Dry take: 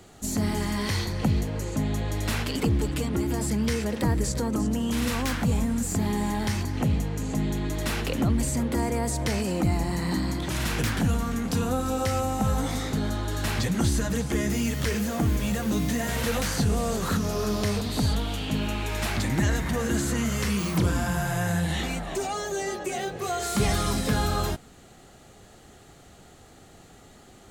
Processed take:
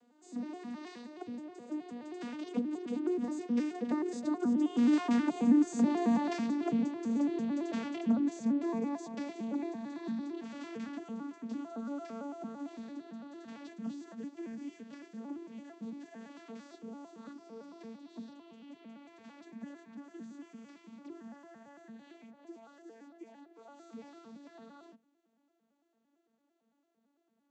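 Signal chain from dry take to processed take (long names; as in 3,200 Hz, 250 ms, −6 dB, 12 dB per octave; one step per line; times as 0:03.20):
vocoder with an arpeggio as carrier major triad, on A#3, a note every 109 ms
source passing by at 0:05.99, 11 m/s, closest 14 metres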